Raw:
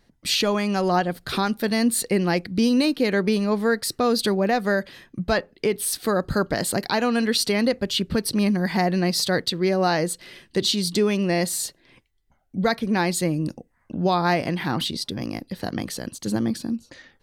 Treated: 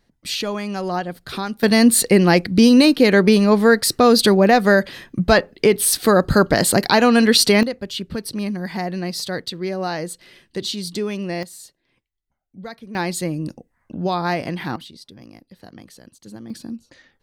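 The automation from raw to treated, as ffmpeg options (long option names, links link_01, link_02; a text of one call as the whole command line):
ffmpeg -i in.wav -af "asetnsamples=nb_out_samples=441:pad=0,asendcmd='1.63 volume volume 8dB;7.63 volume volume -4dB;11.43 volume volume -13dB;12.95 volume volume -1dB;14.76 volume volume -13.5dB;16.5 volume volume -4.5dB',volume=-3dB" out.wav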